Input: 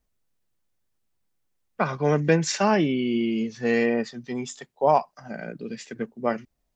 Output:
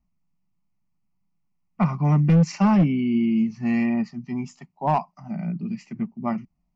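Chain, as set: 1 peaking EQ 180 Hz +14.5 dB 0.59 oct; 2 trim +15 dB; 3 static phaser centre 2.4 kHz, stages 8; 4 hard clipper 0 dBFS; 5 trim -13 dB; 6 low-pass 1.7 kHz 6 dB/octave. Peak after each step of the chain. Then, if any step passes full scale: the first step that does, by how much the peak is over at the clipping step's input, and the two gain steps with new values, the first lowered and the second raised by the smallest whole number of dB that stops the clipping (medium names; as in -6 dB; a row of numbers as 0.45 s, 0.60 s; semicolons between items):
-3.0 dBFS, +12.0 dBFS, +7.5 dBFS, 0.0 dBFS, -13.0 dBFS, -13.0 dBFS; step 2, 7.5 dB; step 2 +7 dB, step 5 -5 dB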